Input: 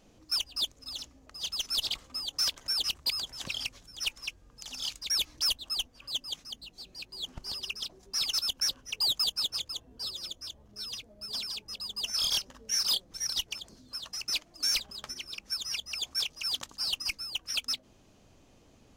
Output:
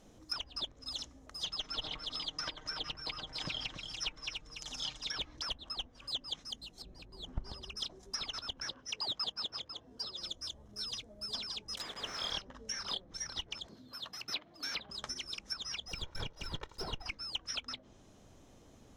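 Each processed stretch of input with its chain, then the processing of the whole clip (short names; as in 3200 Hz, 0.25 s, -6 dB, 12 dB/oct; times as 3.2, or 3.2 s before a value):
1.45–5.21 high shelf 8100 Hz -9.5 dB + comb 6.5 ms, depth 51% + echo 0.288 s -8 dB
6.82–7.77 LPF 1200 Hz 6 dB/oct + low shelf 96 Hz +8.5 dB
8.69–10.2 block floating point 7-bit + HPF 160 Hz 6 dB/oct + bell 5100 Hz +6.5 dB 0.26 oct
11.77–12.32 switching spikes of -31.5 dBFS + resonant low shelf 270 Hz -12 dB, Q 1.5 + careless resampling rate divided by 2×, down none, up zero stuff
13.67–14.9 HPF 100 Hz + band shelf 7500 Hz -12.5 dB 1.2 oct
15.88–17.06 minimum comb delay 2.1 ms + high shelf 8800 Hz -9 dB + careless resampling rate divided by 2×, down none, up zero stuff
whole clip: treble ducked by the level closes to 2400 Hz, closed at -29.5 dBFS; bell 2600 Hz -6.5 dB 0.36 oct; notch 4600 Hz, Q 9.3; gain +1 dB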